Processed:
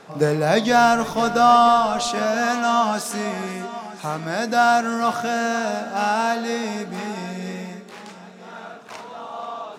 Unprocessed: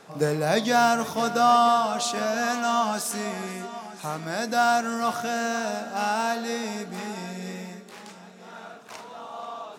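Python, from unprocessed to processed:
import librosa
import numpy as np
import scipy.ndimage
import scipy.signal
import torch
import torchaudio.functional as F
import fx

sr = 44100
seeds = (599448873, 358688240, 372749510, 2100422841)

y = fx.high_shelf(x, sr, hz=6800.0, db=-8.5)
y = fx.dmg_noise_colour(y, sr, seeds[0], colour='brown', level_db=-54.0, at=(0.67, 2.08), fade=0.02)
y = y * librosa.db_to_amplitude(5.0)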